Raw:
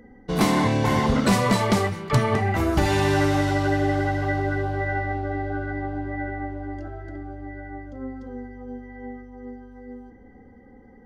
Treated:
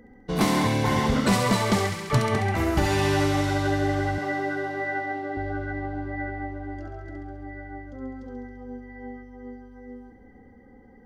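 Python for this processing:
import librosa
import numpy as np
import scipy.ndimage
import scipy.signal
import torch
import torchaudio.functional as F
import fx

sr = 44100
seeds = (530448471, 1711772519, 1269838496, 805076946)

y = fx.highpass(x, sr, hz=160.0, slope=24, at=(4.18, 5.37))
y = fx.echo_wet_highpass(y, sr, ms=68, feedback_pct=74, hz=1700.0, wet_db=-5.0)
y = y * librosa.db_to_amplitude(-2.0)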